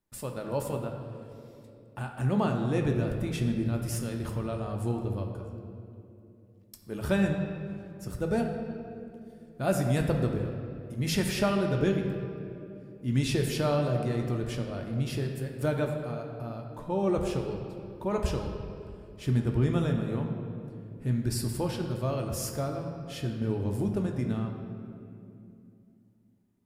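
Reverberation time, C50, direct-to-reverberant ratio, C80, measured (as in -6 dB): 2.7 s, 4.5 dB, 2.0 dB, 6.0 dB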